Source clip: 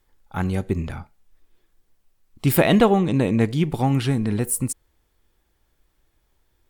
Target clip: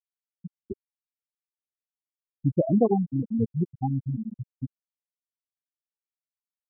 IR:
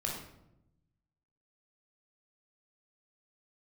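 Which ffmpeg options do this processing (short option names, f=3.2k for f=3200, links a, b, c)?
-af "afftfilt=real='re*gte(hypot(re,im),0.794)':imag='im*gte(hypot(re,im),0.794)':win_size=1024:overlap=0.75,anlmdn=0.0158,volume=-4dB"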